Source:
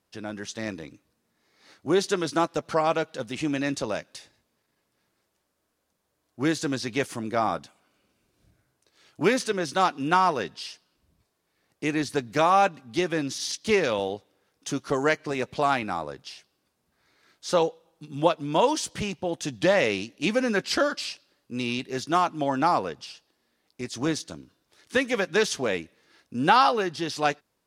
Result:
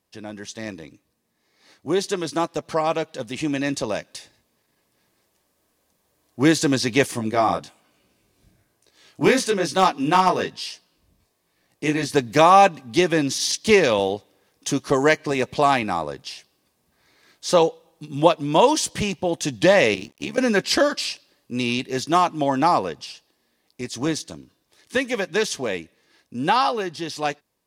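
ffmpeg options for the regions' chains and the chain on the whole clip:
ffmpeg -i in.wav -filter_complex "[0:a]asettb=1/sr,asplit=3[link_01][link_02][link_03];[link_01]atrim=end=7.114[link_04];[link_02]atrim=start=7.11:end=12.12,asetpts=PTS-STARTPTS,afade=type=in:duration=0.004:curve=qsin,afade=type=out:start_time=5.006:duration=0.004:curve=qsin,flanger=delay=16:depth=6.1:speed=1.1,asoftclip=type=hard:threshold=-15.5dB[link_05];[link_03]atrim=start=12.116[link_06];[link_04][link_05]acrossfade=duration=0.004:curve1=hsin:curve2=qsin[link_07];[link_07][link_06]acrossfade=duration=0.004:curve1=qsin:curve2=hsin,asettb=1/sr,asplit=3[link_08][link_09][link_10];[link_08]atrim=end=19.944[link_11];[link_09]atrim=start=19.94:end=20.38,asetpts=PTS-STARTPTS,afade=type=in:duration=0.004:curve=qsin,afade=type=out:start_time=0.436:duration=0.004:curve=qsin,acrossover=split=460|2100[link_12][link_13][link_14];[link_12]acompressor=threshold=-34dB:ratio=4[link_15];[link_13]acompressor=threshold=-41dB:ratio=4[link_16];[link_14]acompressor=threshold=-38dB:ratio=4[link_17];[link_15][link_16][link_17]amix=inputs=3:normalize=0,tremolo=f=71:d=0.788,aeval=exprs='sgn(val(0))*max(abs(val(0))-0.00106,0)':channel_layout=same[link_18];[link_10]atrim=start=20.376[link_19];[link_11][link_18]acrossfade=duration=0.004:curve1=hsin:curve2=qsin[link_20];[link_20][link_19]acrossfade=duration=0.004:curve1=qsin:curve2=hsin,highshelf=frequency=10000:gain=5,bandreject=frequency=1400:width=7,dynaudnorm=framelen=450:gausssize=21:maxgain=11.5dB" out.wav

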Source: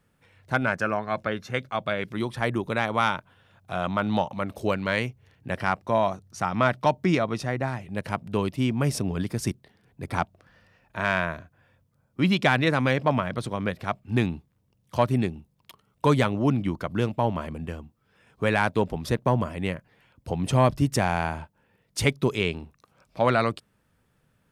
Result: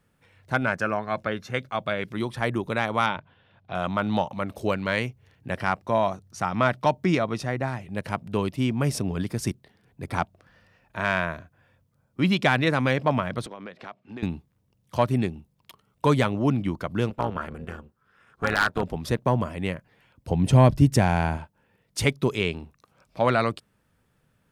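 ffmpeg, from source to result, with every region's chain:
ffmpeg -i in.wav -filter_complex "[0:a]asettb=1/sr,asplit=3[link_01][link_02][link_03];[link_01]atrim=end=3.064[link_04];[link_02]atrim=start=3.06:end=3.75,asetpts=PTS-STARTPTS,afade=type=in:duration=0.004:curve=qsin,afade=type=out:start_time=0.686:duration=0.004:curve=qsin,lowpass=frequency=4200:width=0.5412,lowpass=frequency=4200:width=1.3066,equalizer=frequency=1300:width_type=o:width=0.34:gain=-5,bandreject=frequency=50:width_type=h:width=6,bandreject=frequency=100:width_type=h:width=6,bandreject=frequency=150:width_type=h:width=6[link_05];[link_03]atrim=start=3.746[link_06];[link_04][link_05]acrossfade=duration=0.004:curve1=hsin:curve2=qsin[link_07];[link_07][link_06]acrossfade=duration=0.004:curve1=qsin:curve2=hsin,asettb=1/sr,asplit=3[link_08][link_09][link_10];[link_08]atrim=end=13.464[link_11];[link_09]atrim=start=13.46:end=14.23,asetpts=PTS-STARTPTS,afade=type=in:duration=0.004:curve=qsin,afade=type=out:start_time=0.766:duration=0.004:curve=qsin,highpass=260,lowpass=4600,acompressor=threshold=-36dB:ratio=4:attack=3.2:release=140:knee=1:detection=peak[link_12];[link_10]atrim=start=14.226[link_13];[link_11][link_12]acrossfade=duration=0.004:curve1=hsin:curve2=qsin[link_14];[link_14][link_13]acrossfade=duration=0.004:curve1=qsin:curve2=hsin,asettb=1/sr,asplit=3[link_15][link_16][link_17];[link_15]atrim=end=17.104[link_18];[link_16]atrim=start=17.1:end=18.83,asetpts=PTS-STARTPTS,afade=type=in:duration=0.004:curve=qsin,afade=type=out:start_time=1.726:duration=0.004:curve=qsin,equalizer=frequency=1400:width=4:gain=14.5,tremolo=f=290:d=0.824,aeval=exprs='0.282*(abs(mod(val(0)/0.282+3,4)-2)-1)':channel_layout=same[link_19];[link_17]atrim=start=18.826[link_20];[link_18][link_19]acrossfade=duration=0.004:curve1=hsin:curve2=qsin[link_21];[link_21][link_20]acrossfade=duration=0.004:curve1=qsin:curve2=hsin,asettb=1/sr,asplit=3[link_22][link_23][link_24];[link_22]atrim=end=20.314[link_25];[link_23]atrim=start=20.31:end=21.37,asetpts=PTS-STARTPTS,afade=type=in:duration=0.004:curve=qsin,afade=type=out:start_time=1.056:duration=0.004:curve=qsin,lowshelf=frequency=310:gain=7.5,bandreject=frequency=1200:width=8.7[link_26];[link_24]atrim=start=21.366[link_27];[link_25][link_26]acrossfade=duration=0.004:curve1=hsin:curve2=qsin[link_28];[link_28][link_27]acrossfade=duration=0.004:curve1=qsin:curve2=hsin" out.wav

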